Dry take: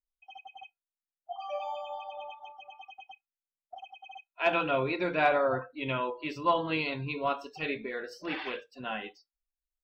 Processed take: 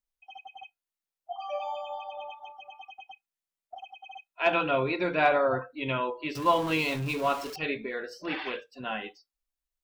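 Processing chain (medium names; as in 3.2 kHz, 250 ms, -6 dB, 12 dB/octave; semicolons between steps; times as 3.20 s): 6.35–7.56 s: jump at every zero crossing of -37.5 dBFS; trim +2 dB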